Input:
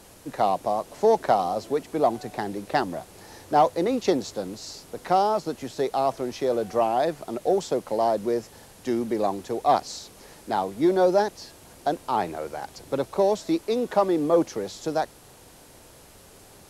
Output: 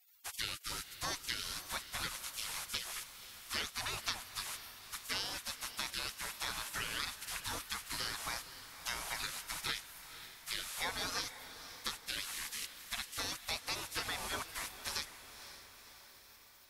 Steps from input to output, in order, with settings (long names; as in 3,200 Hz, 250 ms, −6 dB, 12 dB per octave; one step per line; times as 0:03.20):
gate on every frequency bin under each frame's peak −30 dB weak
downward compressor 2.5 to 1, threshold −50 dBFS, peak gain reduction 11 dB
feedback delay with all-pass diffusion 524 ms, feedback 58%, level −12.5 dB
level +11.5 dB